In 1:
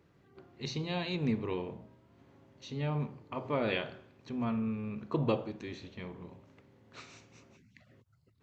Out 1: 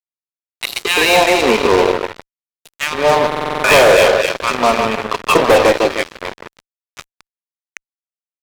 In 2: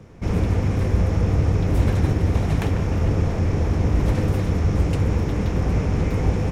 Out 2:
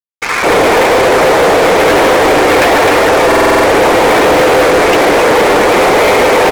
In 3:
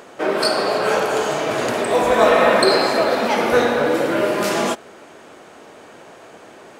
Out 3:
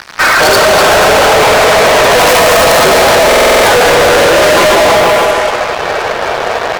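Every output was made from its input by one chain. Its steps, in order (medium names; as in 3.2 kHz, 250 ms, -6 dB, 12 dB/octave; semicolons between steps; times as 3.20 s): Bessel high-pass 670 Hz, order 4; on a send: two-band feedback delay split 1.8 kHz, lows 153 ms, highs 257 ms, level -6.5 dB; on the sum: loudest bins only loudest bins 64; distance through air 260 m; in parallel at -6 dB: integer overflow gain 11.5 dB; on the sum: three bands offset in time mids, highs, lows 80/210 ms, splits 1.2/4.4 kHz; fuzz box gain 41 dB, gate -48 dBFS; buffer glitch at 3.27 s, samples 2048, times 7; trim +7.5 dB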